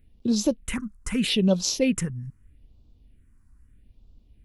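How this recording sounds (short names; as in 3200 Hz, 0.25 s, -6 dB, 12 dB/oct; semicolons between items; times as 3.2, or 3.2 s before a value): phasing stages 4, 0.79 Hz, lowest notch 530–1800 Hz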